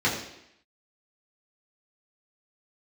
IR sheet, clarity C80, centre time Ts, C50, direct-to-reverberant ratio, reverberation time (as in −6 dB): 8.0 dB, 35 ms, 5.5 dB, −7.0 dB, 0.80 s